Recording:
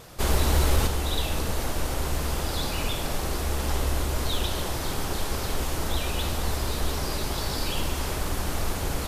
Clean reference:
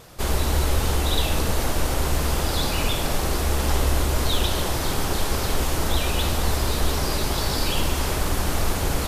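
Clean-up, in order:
clipped peaks rebuilt −13 dBFS
level 0 dB, from 0:00.87 +5 dB

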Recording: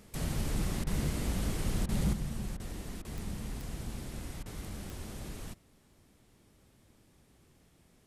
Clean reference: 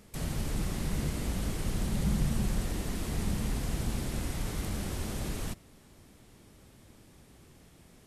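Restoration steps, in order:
clipped peaks rebuilt −22.5 dBFS
click removal
repair the gap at 0:00.84/0:01.86/0:02.57/0:03.02/0:04.43, 27 ms
level correction +7.5 dB, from 0:02.13

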